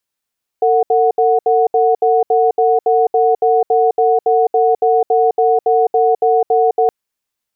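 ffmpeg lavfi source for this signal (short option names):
-f lavfi -i "aevalsrc='0.251*(sin(2*PI*452*t)+sin(2*PI*736*t))*clip(min(mod(t,0.28),0.21-mod(t,0.28))/0.005,0,1)':d=6.27:s=44100"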